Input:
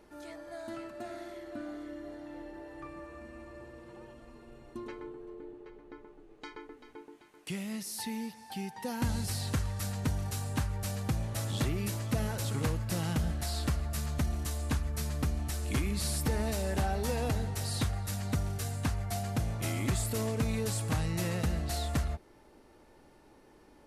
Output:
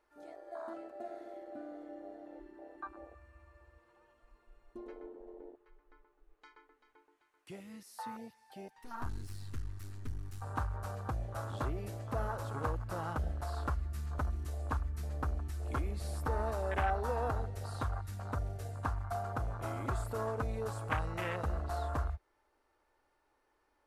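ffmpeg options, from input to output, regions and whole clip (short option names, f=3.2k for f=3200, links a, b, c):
-filter_complex "[0:a]asettb=1/sr,asplit=3[a][b][c];[a]atrim=end=8.684[d];[b]atrim=start=8.68:end=10.42,asetpts=PTS-STARTPTS,afade=t=in:d=0.004:c=qsin,afade=t=out:st=1.736:d=0.004:c=qsin,aeval=exprs='clip(val(0),-1,0.00668)':c=same,adynamicequalizer=threshold=0.00224:dfrequency=660:dqfactor=0.72:tfrequency=660:tqfactor=0.72:attack=5:release=100:ratio=0.375:range=3:mode=cutabove:tftype=bell[e];[c]atrim=start=10.416[f];[d][e]acrossfade=d=0.004:c1=hsin:c2=qsin[g];[g][f]acrossfade=d=0.004:c1=qsin:c2=hsin,equalizer=f=1.3k:t=o:w=1.5:g=7.5,afwtdn=0.02,equalizer=f=180:t=o:w=1.4:g=-14.5"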